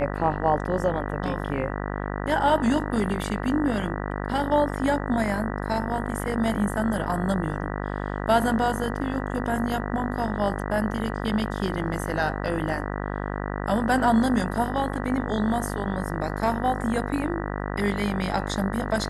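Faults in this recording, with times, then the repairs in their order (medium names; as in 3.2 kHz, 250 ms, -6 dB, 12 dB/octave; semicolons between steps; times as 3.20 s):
buzz 50 Hz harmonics 39 -30 dBFS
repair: de-hum 50 Hz, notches 39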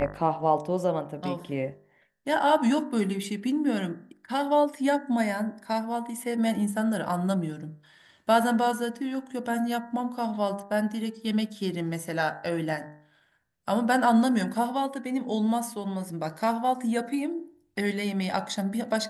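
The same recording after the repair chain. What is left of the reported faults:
nothing left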